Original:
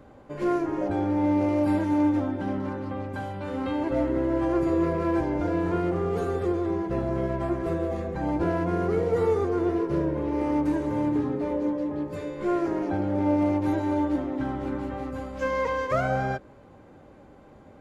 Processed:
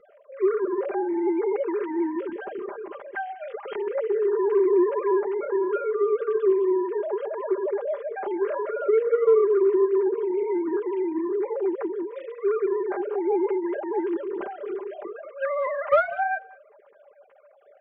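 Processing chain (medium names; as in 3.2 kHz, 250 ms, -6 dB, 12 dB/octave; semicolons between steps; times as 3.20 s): formants replaced by sine waves; saturation -10.5 dBFS, distortion -25 dB; comb 5 ms, depth 78%; delay 196 ms -22.5 dB; trim -1 dB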